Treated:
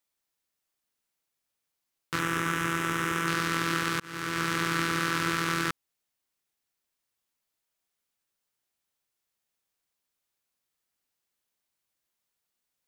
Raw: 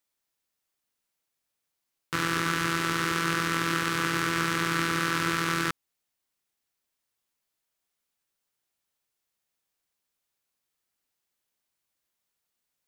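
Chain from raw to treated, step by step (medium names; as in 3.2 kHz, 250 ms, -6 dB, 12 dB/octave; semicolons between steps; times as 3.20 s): 2.19–3.28 s: peaking EQ 4.4 kHz -14 dB 0.4 oct; 4.00–4.62 s: fade in equal-power; trim -1 dB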